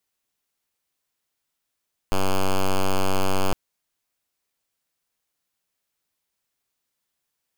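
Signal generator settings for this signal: pulse 95.4 Hz, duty 5% -18.5 dBFS 1.41 s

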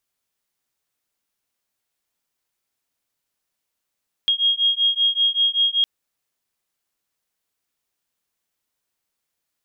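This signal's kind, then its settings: beating tones 3.26 kHz, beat 5.2 Hz, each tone -19.5 dBFS 1.56 s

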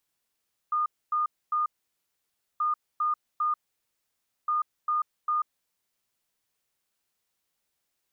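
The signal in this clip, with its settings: beep pattern sine 1.22 kHz, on 0.14 s, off 0.26 s, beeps 3, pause 0.94 s, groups 3, -23 dBFS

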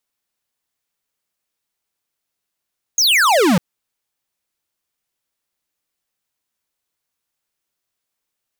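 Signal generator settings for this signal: laser zap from 6.8 kHz, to 160 Hz, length 0.60 s square, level -13 dB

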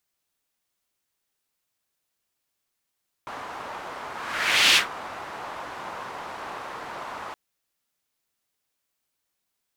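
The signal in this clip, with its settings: whoosh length 4.07 s, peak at 1.48 s, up 0.68 s, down 0.14 s, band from 1 kHz, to 3.1 kHz, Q 1.6, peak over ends 19.5 dB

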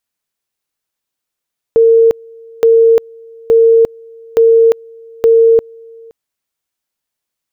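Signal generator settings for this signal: two-level tone 456 Hz -4 dBFS, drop 28.5 dB, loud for 0.35 s, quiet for 0.52 s, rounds 5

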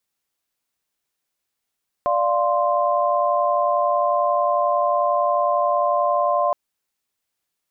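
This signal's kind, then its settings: chord D5/F5/C6 sine, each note -21 dBFS 4.47 s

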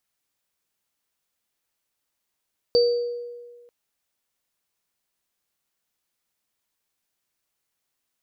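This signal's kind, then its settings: sine partials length 0.94 s, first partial 480 Hz, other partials 4.62 kHz, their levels -7.5 dB, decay 1.56 s, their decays 0.64 s, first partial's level -13.5 dB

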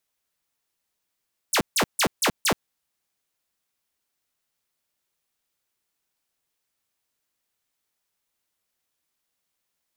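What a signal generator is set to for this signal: burst of laser zaps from 11 kHz, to 140 Hz, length 0.08 s saw, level -15.5 dB, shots 5, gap 0.15 s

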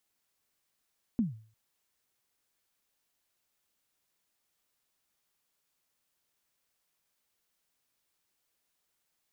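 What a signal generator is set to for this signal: kick drum length 0.35 s, from 250 Hz, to 110 Hz, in 149 ms, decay 0.44 s, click off, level -21.5 dB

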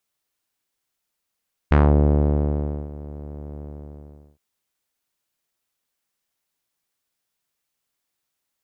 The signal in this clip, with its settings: synth note saw D2 12 dB/octave, low-pass 550 Hz, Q 1.2, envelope 2 oct, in 0.23 s, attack 7.7 ms, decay 1.17 s, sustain -21 dB, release 0.78 s, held 1.89 s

